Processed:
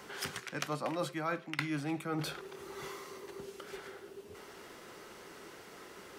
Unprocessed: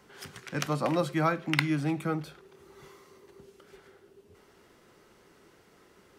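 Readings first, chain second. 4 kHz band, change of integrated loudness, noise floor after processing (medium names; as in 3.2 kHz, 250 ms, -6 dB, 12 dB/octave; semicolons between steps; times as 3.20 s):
-3.5 dB, -10.0 dB, -53 dBFS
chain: bass shelf 230 Hz -10 dB; reverse; compression 6:1, threshold -44 dBFS, peak gain reduction 22 dB; reverse; trim +10 dB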